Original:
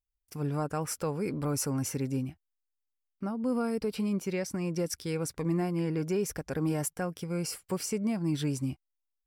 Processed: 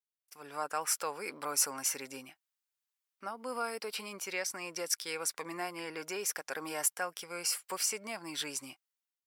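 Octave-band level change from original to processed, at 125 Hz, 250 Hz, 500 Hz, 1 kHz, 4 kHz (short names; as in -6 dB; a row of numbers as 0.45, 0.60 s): -26.0, -17.0, -7.5, +1.5, +5.0 dB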